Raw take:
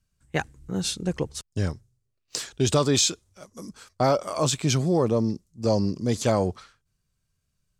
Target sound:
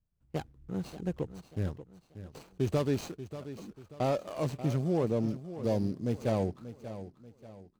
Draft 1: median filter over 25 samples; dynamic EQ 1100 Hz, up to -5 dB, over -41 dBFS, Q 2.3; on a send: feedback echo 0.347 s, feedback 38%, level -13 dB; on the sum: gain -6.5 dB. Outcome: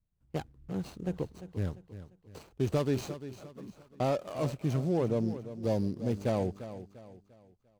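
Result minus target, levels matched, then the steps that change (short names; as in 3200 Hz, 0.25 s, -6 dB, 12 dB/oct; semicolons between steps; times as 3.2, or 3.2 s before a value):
echo 0.239 s early
change: feedback echo 0.586 s, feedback 38%, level -13 dB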